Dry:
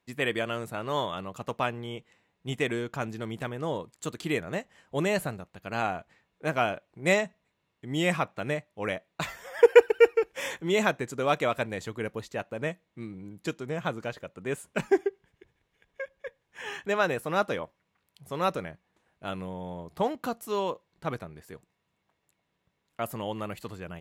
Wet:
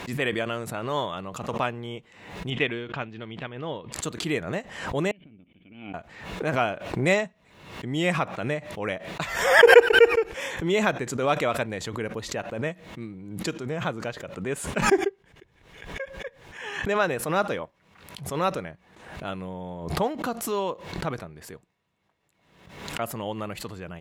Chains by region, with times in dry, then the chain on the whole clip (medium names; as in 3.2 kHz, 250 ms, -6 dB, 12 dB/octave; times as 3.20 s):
2.50–3.92 s: resonant low-pass 3.1 kHz, resonance Q 2.3 + upward expansion, over -45 dBFS
5.11–5.94 s: tilt shelf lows -4 dB, about 770 Hz + compression 16:1, threshold -35 dBFS + cascade formant filter i
whole clip: treble shelf 11 kHz -10 dB; swell ahead of each attack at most 67 dB/s; trim +1.5 dB